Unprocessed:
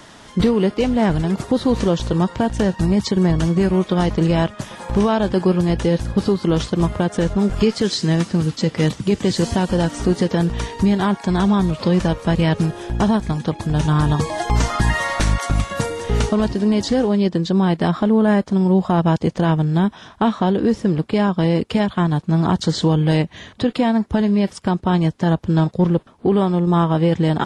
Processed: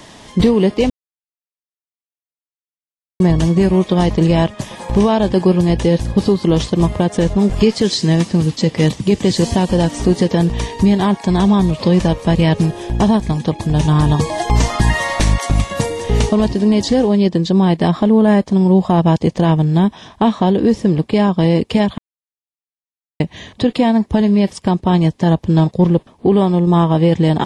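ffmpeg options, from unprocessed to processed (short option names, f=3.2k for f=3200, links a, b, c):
-filter_complex "[0:a]asplit=5[a][b][c][d][e];[a]atrim=end=0.9,asetpts=PTS-STARTPTS,afade=t=out:st=0.896:d=0.004:c=hsin[f];[b]atrim=start=0.9:end=3.2,asetpts=PTS-STARTPTS,volume=0[g];[c]atrim=start=3.2:end=21.98,asetpts=PTS-STARTPTS,afade=t=in:d=0.004:c=hsin,afade=t=out:st=18.776:d=0.004:c=hsin[h];[d]atrim=start=21.98:end=23.2,asetpts=PTS-STARTPTS,volume=0[i];[e]atrim=start=23.2,asetpts=PTS-STARTPTS,afade=t=in:d=0.004:c=hsin[j];[f][g][h][i][j]concat=n=5:v=0:a=1,equalizer=f=1.4k:t=o:w=0.32:g=-11,volume=4dB"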